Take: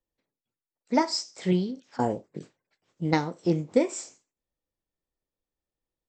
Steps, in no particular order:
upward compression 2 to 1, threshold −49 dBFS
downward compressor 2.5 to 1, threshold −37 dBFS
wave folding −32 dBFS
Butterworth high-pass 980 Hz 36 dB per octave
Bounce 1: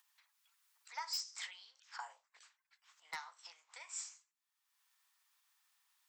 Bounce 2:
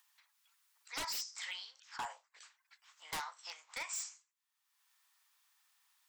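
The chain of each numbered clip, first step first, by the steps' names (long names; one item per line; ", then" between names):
upward compression, then downward compressor, then Butterworth high-pass, then wave folding
Butterworth high-pass, then upward compression, then wave folding, then downward compressor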